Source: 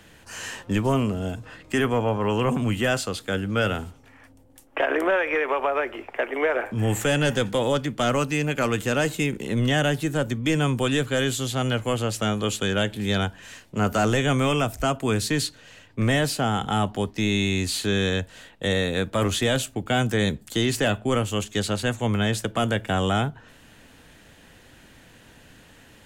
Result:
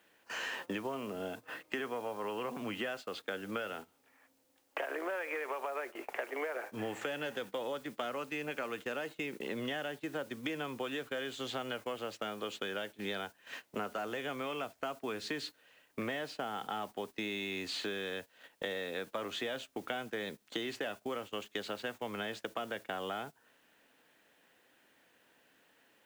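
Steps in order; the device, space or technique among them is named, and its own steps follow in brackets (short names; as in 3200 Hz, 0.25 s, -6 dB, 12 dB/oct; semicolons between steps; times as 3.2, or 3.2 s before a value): baby monitor (BPF 350–3500 Hz; compressor 10:1, threshold -36 dBFS, peak gain reduction 17.5 dB; white noise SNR 21 dB; gate -45 dBFS, range -15 dB); gain +1 dB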